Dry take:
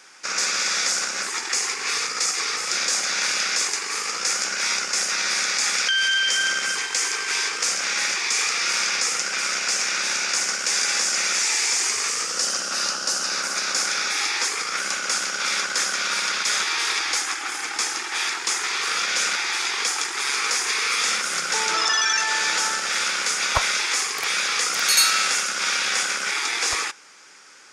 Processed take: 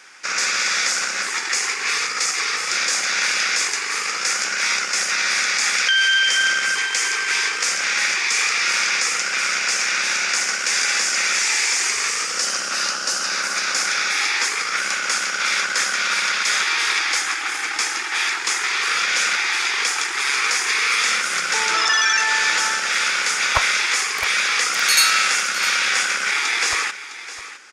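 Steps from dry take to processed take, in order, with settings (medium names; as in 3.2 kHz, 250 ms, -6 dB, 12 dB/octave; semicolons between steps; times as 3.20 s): peaking EQ 2 kHz +6 dB 1.4 oct; delay 659 ms -14 dB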